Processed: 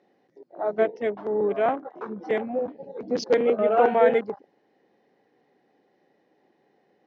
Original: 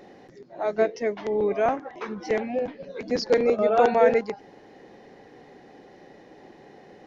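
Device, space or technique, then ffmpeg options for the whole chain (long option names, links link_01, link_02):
over-cleaned archive recording: -af "highpass=150,lowpass=5700,afwtdn=0.0158"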